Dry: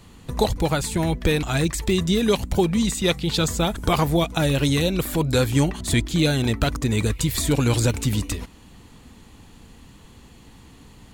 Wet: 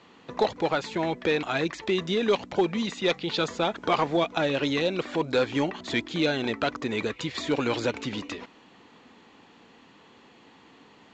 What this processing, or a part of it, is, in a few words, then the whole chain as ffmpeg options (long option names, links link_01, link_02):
telephone: -af "highpass=330,lowpass=3300,asoftclip=type=tanh:threshold=-12dB" -ar 16000 -c:a pcm_alaw